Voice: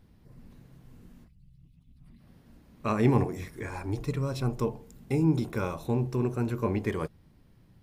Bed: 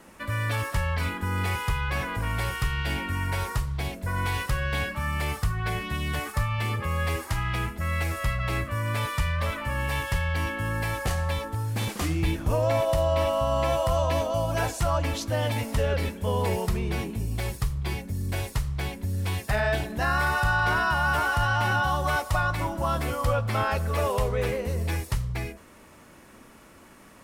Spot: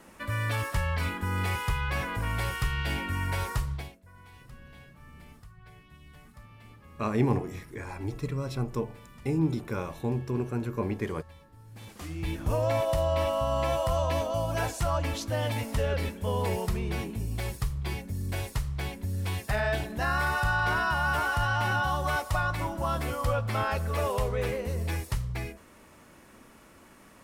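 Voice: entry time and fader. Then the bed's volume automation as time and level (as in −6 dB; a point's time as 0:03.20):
4.15 s, −2.0 dB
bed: 0:03.73 −2 dB
0:04.03 −24.5 dB
0:11.53 −24.5 dB
0:12.44 −3 dB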